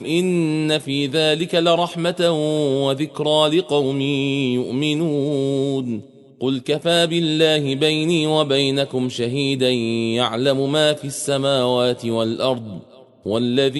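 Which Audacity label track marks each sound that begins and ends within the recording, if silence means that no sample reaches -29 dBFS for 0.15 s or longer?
6.410000	12.800000	sound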